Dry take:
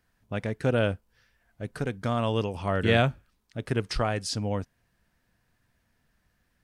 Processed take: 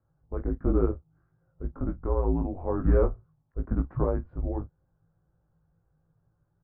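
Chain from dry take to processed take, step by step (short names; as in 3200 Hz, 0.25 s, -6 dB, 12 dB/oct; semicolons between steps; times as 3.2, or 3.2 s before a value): frequency shift -170 Hz; Bessel low-pass 750 Hz, order 6; early reflections 19 ms -4 dB, 48 ms -16 dB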